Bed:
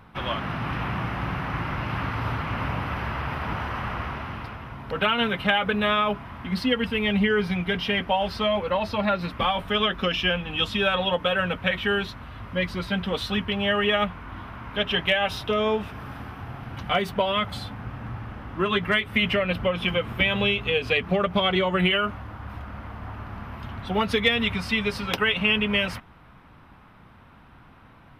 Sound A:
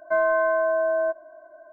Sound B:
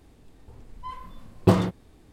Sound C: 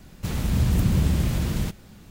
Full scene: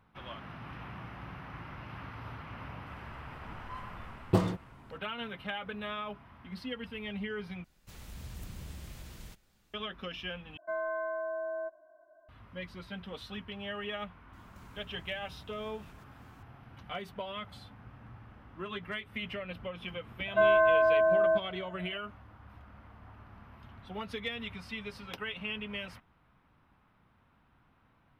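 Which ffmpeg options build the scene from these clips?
ffmpeg -i bed.wav -i cue0.wav -i cue1.wav -i cue2.wav -filter_complex "[3:a]asplit=2[link_01][link_02];[1:a]asplit=2[link_03][link_04];[0:a]volume=-16dB[link_05];[link_01]equalizer=frequency=170:width=0.38:gain=-10.5[link_06];[link_02]acompressor=threshold=-34dB:ratio=12:attack=0.32:release=427:knee=1:detection=peak[link_07];[link_05]asplit=3[link_08][link_09][link_10];[link_08]atrim=end=7.644[link_11];[link_06]atrim=end=2.1,asetpts=PTS-STARTPTS,volume=-16.5dB[link_12];[link_09]atrim=start=9.736:end=10.574[link_13];[link_03]atrim=end=1.72,asetpts=PTS-STARTPTS,volume=-13.5dB[link_14];[link_10]atrim=start=12.286[link_15];[2:a]atrim=end=2.12,asetpts=PTS-STARTPTS,volume=-8dB,afade=type=in:duration=0.004:curve=hsin,afade=type=out:start_time=2.116:duration=0.004:curve=hsin,adelay=2860[link_16];[link_07]atrim=end=2.1,asetpts=PTS-STARTPTS,volume=-14dB,afade=type=in:duration=0.004:curve=hsin,afade=type=out:start_time=2.096:duration=0.004:curve=hsin,adelay=14330[link_17];[link_04]atrim=end=1.72,asetpts=PTS-STARTPTS,volume=-2dB,afade=type=in:duration=0.004:curve=hsin,afade=type=out:start_time=1.716:duration=0.004:curve=hsin,adelay=20260[link_18];[link_11][link_12]acrossfade=duration=0.004:curve1=hsin:curve2=hsin[link_19];[link_19][link_13]acrossfade=duration=0.004:curve1=hsin:curve2=hsin[link_20];[link_20][link_14]acrossfade=duration=0.004:curve1=hsin:curve2=hsin[link_21];[link_21][link_15]acrossfade=duration=0.004:curve1=hsin:curve2=hsin[link_22];[link_22][link_16][link_17][link_18]amix=inputs=4:normalize=0" out.wav

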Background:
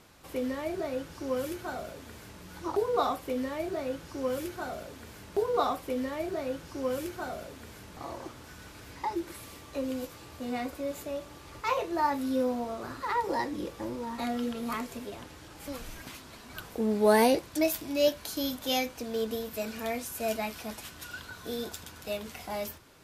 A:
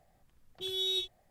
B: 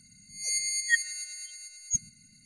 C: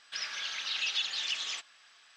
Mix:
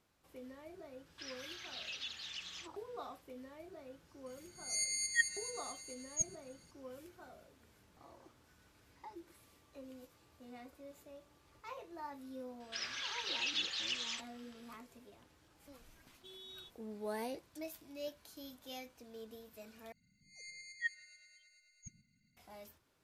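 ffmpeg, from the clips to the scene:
ffmpeg -i bed.wav -i cue0.wav -i cue1.wav -i cue2.wav -filter_complex "[3:a]asplit=2[link_01][link_02];[2:a]asplit=2[link_03][link_04];[0:a]volume=-19dB[link_05];[1:a]alimiter=level_in=6.5dB:limit=-24dB:level=0:latency=1:release=71,volume=-6.5dB[link_06];[link_04]lowpass=2900[link_07];[link_05]asplit=2[link_08][link_09];[link_08]atrim=end=19.924[link_10];[link_07]atrim=end=2.45,asetpts=PTS-STARTPTS,volume=-12.5dB[link_11];[link_09]atrim=start=22.366[link_12];[link_01]atrim=end=2.16,asetpts=PTS-STARTPTS,volume=-12.5dB,afade=type=in:duration=0.004:curve=hsin,afade=type=out:start_time=2.156:duration=0.004:curve=hsin,adelay=1060[link_13];[link_03]atrim=end=2.45,asetpts=PTS-STARTPTS,volume=-7dB,afade=type=in:duration=0.004:curve=hsin,afade=type=out:start_time=2.446:duration=0.004:curve=hsin,adelay=4260[link_14];[link_02]atrim=end=2.16,asetpts=PTS-STARTPTS,volume=-5dB,afade=type=in:duration=0.004:curve=hsin,afade=type=out:start_time=2.156:duration=0.004:curve=hsin,adelay=12600[link_15];[link_06]atrim=end=1.3,asetpts=PTS-STARTPTS,volume=-15.5dB,afade=type=in:duration=0.004:curve=hsin,afade=type=out:start_time=1.296:duration=0.004:curve=hsin,adelay=15630[link_16];[link_10][link_11]acrossfade=duration=0.004:curve1=hsin:curve2=hsin[link_17];[link_17][link_12]acrossfade=duration=0.004:curve1=hsin:curve2=hsin[link_18];[link_18][link_13][link_14][link_15][link_16]amix=inputs=5:normalize=0" out.wav

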